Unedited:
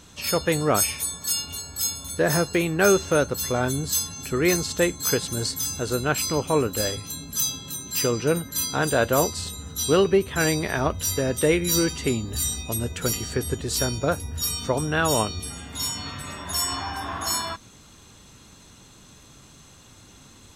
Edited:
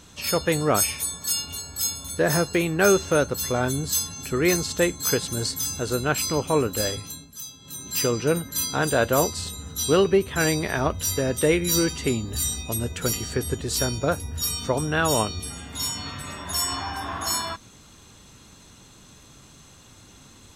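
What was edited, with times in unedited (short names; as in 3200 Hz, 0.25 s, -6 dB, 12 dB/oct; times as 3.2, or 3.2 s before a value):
7–7.89 dip -13 dB, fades 0.31 s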